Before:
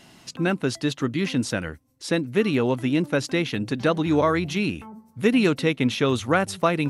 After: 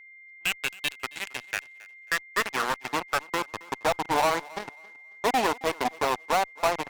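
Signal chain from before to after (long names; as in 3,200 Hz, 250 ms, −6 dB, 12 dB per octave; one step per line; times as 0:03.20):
high-pass filter 170 Hz 24 dB per octave
power curve on the samples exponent 3
band-pass filter sweep 2,700 Hz → 840 Hz, 0:00.99–0:03.80
in parallel at −8 dB: fuzz pedal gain 56 dB, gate −59 dBFS
on the sum: steady tone 2,100 Hz −47 dBFS
on a send: feedback echo with a high-pass in the loop 271 ms, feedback 27%, high-pass 250 Hz, level −21.5 dB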